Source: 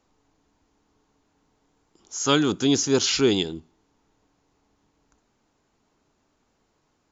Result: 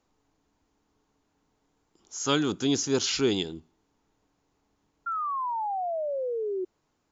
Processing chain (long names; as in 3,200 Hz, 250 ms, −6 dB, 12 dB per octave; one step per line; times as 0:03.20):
sound drawn into the spectrogram fall, 0:05.06–0:06.65, 360–1,400 Hz −25 dBFS
level −5 dB